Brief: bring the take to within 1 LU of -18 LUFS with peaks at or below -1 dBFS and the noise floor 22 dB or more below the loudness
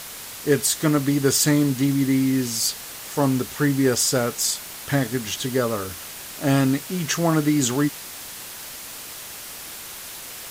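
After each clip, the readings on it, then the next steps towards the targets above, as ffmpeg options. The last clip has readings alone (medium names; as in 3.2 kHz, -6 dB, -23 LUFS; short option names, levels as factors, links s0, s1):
noise floor -37 dBFS; noise floor target -44 dBFS; loudness -21.5 LUFS; peak level -7.0 dBFS; loudness target -18.0 LUFS
-> -af "afftdn=nr=7:nf=-37"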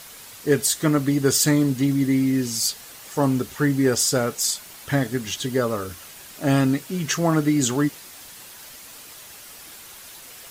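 noise floor -43 dBFS; noise floor target -44 dBFS
-> -af "afftdn=nr=6:nf=-43"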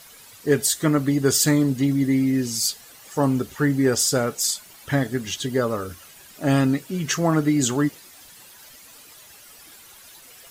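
noise floor -47 dBFS; loudness -22.0 LUFS; peak level -7.5 dBFS; loudness target -18.0 LUFS
-> -af "volume=1.58"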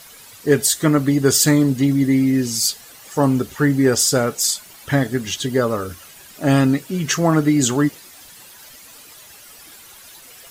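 loudness -18.0 LUFS; peak level -3.5 dBFS; noise floor -43 dBFS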